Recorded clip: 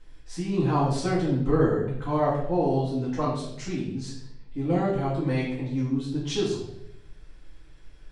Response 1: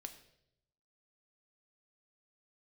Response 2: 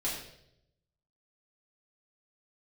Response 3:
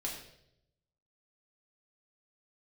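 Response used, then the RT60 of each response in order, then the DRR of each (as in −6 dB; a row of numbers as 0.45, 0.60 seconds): 2; 0.75, 0.75, 0.75 seconds; 6.5, −7.5, −3.0 decibels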